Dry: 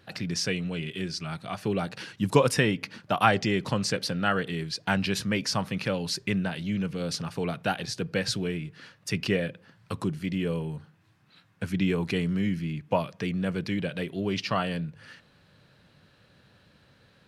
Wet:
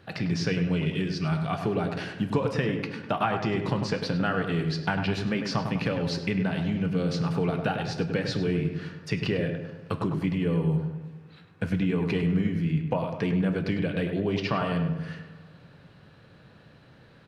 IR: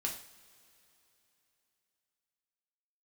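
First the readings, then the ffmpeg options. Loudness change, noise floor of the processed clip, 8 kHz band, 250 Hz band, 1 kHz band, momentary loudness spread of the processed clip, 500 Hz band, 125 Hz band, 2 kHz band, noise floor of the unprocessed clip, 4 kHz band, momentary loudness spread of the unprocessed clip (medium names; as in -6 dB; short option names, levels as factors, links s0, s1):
+1.0 dB, -54 dBFS, -10.5 dB, +2.5 dB, -1.5 dB, 6 LU, +0.5 dB, +4.0 dB, -1.5 dB, -62 dBFS, -4.0 dB, 9 LU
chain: -filter_complex "[0:a]acrossover=split=5500[s0][s1];[s1]acompressor=threshold=0.00282:ratio=4:attack=1:release=60[s2];[s0][s2]amix=inputs=2:normalize=0,highshelf=f=3100:g=-9,acompressor=threshold=0.0355:ratio=6,asplit=2[s3][s4];[s4]adelay=101,lowpass=f=1900:p=1,volume=0.531,asplit=2[s5][s6];[s6]adelay=101,lowpass=f=1900:p=1,volume=0.55,asplit=2[s7][s8];[s8]adelay=101,lowpass=f=1900:p=1,volume=0.55,asplit=2[s9][s10];[s10]adelay=101,lowpass=f=1900:p=1,volume=0.55,asplit=2[s11][s12];[s12]adelay=101,lowpass=f=1900:p=1,volume=0.55,asplit=2[s13][s14];[s14]adelay=101,lowpass=f=1900:p=1,volume=0.55,asplit=2[s15][s16];[s16]adelay=101,lowpass=f=1900:p=1,volume=0.55[s17];[s3][s5][s7][s9][s11][s13][s15][s17]amix=inputs=8:normalize=0,asplit=2[s18][s19];[1:a]atrim=start_sample=2205,highshelf=f=11000:g=-5.5[s20];[s19][s20]afir=irnorm=-1:irlink=0,volume=0.631[s21];[s18][s21]amix=inputs=2:normalize=0,volume=1.19"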